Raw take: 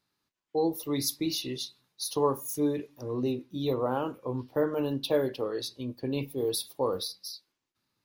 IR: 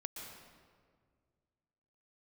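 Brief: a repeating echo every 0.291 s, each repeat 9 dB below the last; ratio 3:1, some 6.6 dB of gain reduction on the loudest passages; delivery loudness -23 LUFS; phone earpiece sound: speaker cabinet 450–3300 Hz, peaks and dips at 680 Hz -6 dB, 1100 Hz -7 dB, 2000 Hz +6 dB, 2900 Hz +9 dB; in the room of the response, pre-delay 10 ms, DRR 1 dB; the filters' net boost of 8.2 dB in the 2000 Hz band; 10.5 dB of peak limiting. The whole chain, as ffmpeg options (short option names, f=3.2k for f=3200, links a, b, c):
-filter_complex "[0:a]equalizer=f=2k:t=o:g=6,acompressor=threshold=-29dB:ratio=3,alimiter=level_in=4dB:limit=-24dB:level=0:latency=1,volume=-4dB,aecho=1:1:291|582|873|1164:0.355|0.124|0.0435|0.0152,asplit=2[a][b];[1:a]atrim=start_sample=2205,adelay=10[c];[b][c]afir=irnorm=-1:irlink=0,volume=0.5dB[d];[a][d]amix=inputs=2:normalize=0,highpass=450,equalizer=f=680:t=q:w=4:g=-6,equalizer=f=1.1k:t=q:w=4:g=-7,equalizer=f=2k:t=q:w=4:g=6,equalizer=f=2.9k:t=q:w=4:g=9,lowpass=f=3.3k:w=0.5412,lowpass=f=3.3k:w=1.3066,volume=16.5dB"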